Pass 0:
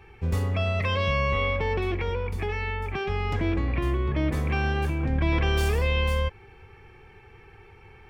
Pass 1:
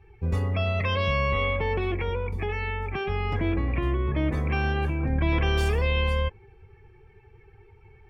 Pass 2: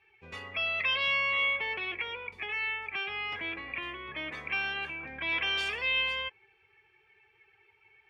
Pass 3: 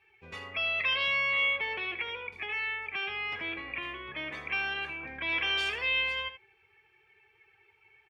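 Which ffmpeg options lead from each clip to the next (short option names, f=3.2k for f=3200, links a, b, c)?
-af "afftdn=nr=13:nf=-44"
-af "bandpass=f=2.8k:t=q:w=1.5:csg=0,volume=4.5dB"
-af "aecho=1:1:79:0.237"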